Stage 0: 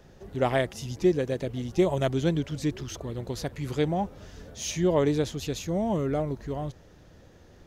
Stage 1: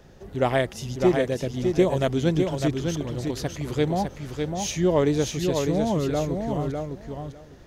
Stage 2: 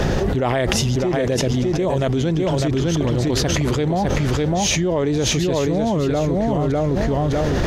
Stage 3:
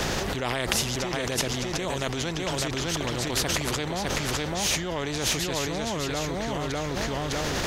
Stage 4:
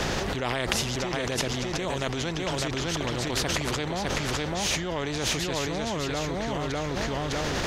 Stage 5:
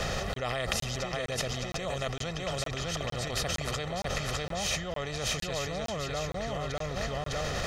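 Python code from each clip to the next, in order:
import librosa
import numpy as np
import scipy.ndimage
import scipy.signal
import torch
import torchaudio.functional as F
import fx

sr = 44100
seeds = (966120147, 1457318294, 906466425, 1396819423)

y1 = fx.echo_feedback(x, sr, ms=604, feedback_pct=15, wet_db=-5)
y1 = y1 * 10.0 ** (2.5 / 20.0)
y2 = fx.high_shelf(y1, sr, hz=9400.0, db=-11.0)
y2 = fx.env_flatten(y2, sr, amount_pct=100)
y2 = y2 * 10.0 ** (-4.5 / 20.0)
y3 = fx.spectral_comp(y2, sr, ratio=2.0)
y3 = y3 * 10.0 ** (-2.5 / 20.0)
y4 = fx.high_shelf(y3, sr, hz=9800.0, db=-11.0)
y5 = y4 + 0.63 * np.pad(y4, (int(1.6 * sr / 1000.0), 0))[:len(y4)]
y5 = fx.buffer_crackle(y5, sr, first_s=0.34, period_s=0.46, block=1024, kind='zero')
y5 = y5 * 10.0 ** (-5.5 / 20.0)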